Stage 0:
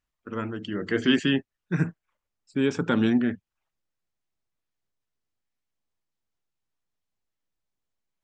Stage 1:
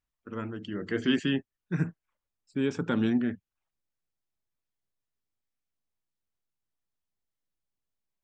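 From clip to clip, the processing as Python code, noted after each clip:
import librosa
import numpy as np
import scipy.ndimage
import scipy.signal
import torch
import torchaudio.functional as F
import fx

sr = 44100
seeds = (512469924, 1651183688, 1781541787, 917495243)

y = fx.low_shelf(x, sr, hz=350.0, db=3.0)
y = y * 10.0 ** (-6.0 / 20.0)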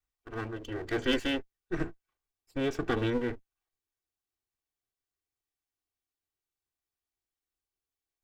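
y = fx.lower_of_two(x, sr, delay_ms=2.6)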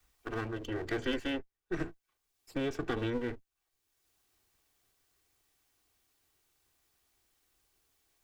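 y = fx.band_squash(x, sr, depth_pct=70)
y = y * 10.0 ** (-3.5 / 20.0)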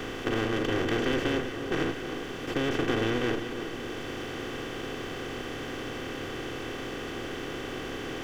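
y = fx.bin_compress(x, sr, power=0.2)
y = fx.echo_split(y, sr, split_hz=1200.0, low_ms=314, high_ms=176, feedback_pct=52, wet_db=-10)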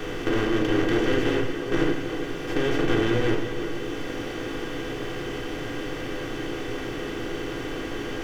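y = fx.room_shoebox(x, sr, seeds[0], volume_m3=38.0, walls='mixed', distance_m=0.54)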